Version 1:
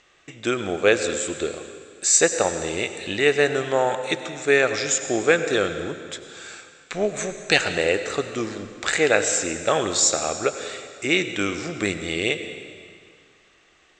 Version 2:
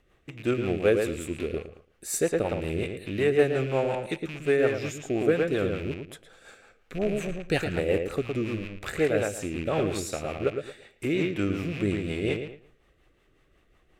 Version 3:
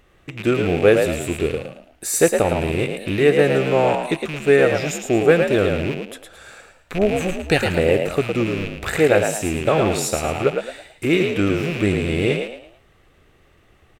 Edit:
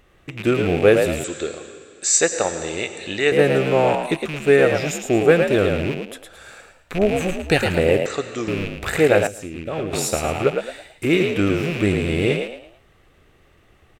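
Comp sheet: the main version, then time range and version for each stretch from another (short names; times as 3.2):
3
1.24–3.32 from 1
8.06–8.48 from 1
9.27–9.93 from 2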